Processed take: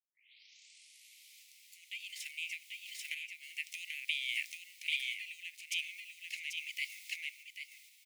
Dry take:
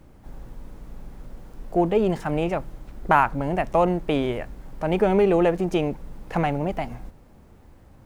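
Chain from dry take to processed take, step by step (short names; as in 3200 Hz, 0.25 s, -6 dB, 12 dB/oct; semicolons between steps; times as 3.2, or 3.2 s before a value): tape start at the beginning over 1.78 s; compressor 10:1, threshold -24 dBFS, peak gain reduction 12.5 dB; on a send: echo 0.789 s -3.5 dB; on the sum: random-step tremolo; steep high-pass 2100 Hz 96 dB/oct; gain +9 dB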